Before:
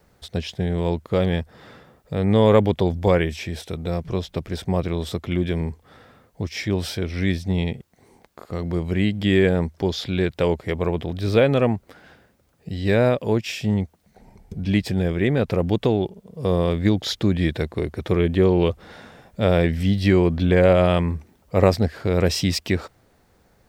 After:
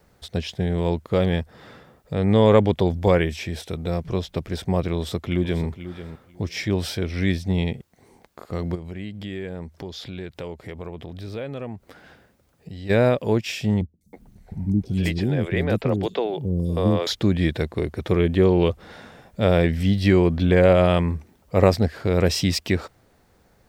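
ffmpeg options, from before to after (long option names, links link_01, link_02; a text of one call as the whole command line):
ffmpeg -i in.wav -filter_complex "[0:a]asettb=1/sr,asplit=3[link_01][link_02][link_03];[link_01]atrim=end=2.134[link_04];[link_02]atrim=start=2.13:end=2.7,asetpts=PTS-STARTPTS,afade=type=in:duration=0.004:curve=qsin,afade=type=out:start_time=0.566:duration=0.004:curve=qsin,lowpass=frequency=10000:width=0.5412,lowpass=frequency=10000:width=1.3066[link_05];[link_03]atrim=start=2.696[link_06];[link_04][link_05]acrossfade=duration=0.004:curve1=hsin:curve2=qsin[link_07];[link_07][link_06]acrossfade=duration=0.004:curve1=qsin:curve2=hsin,asplit=2[link_08][link_09];[link_09]afade=type=in:start_time=4.95:duration=0.01,afade=type=out:start_time=5.66:duration=0.01,aecho=0:1:490|980:0.237137|0.0355706[link_10];[link_08][link_10]amix=inputs=2:normalize=0,asplit=3[link_11][link_12][link_13];[link_11]afade=type=out:start_time=8.74:duration=0.02[link_14];[link_12]acompressor=threshold=-36dB:ratio=2.5:attack=3.2:release=140:knee=1:detection=peak,afade=type=in:start_time=8.74:duration=0.02,afade=type=out:start_time=12.89:duration=0.02[link_15];[link_13]afade=type=in:start_time=12.89:duration=0.02[link_16];[link_14][link_15][link_16]amix=inputs=3:normalize=0,asettb=1/sr,asplit=3[link_17][link_18][link_19];[link_17]atrim=end=13.814[link_20];[link_18]atrim=start=13.81:end=17.07,asetpts=PTS-STARTPTS,afade=type=in:duration=0.004:curve=qsin,afade=type=out:start_time=3.256:duration=0.004:curve=qsin,acrossover=split=340|5200[link_21][link_22][link_23];[link_23]adelay=200[link_24];[link_22]adelay=320[link_25];[link_21][link_25][link_24]amix=inputs=3:normalize=0,atrim=end_sample=143766[link_26];[link_19]atrim=start=17.066[link_27];[link_20][link_26]acrossfade=duration=0.004:curve1=hsin:curve2=qsin[link_28];[link_28][link_27]acrossfade=duration=0.004:curve1=qsin:curve2=hsin" out.wav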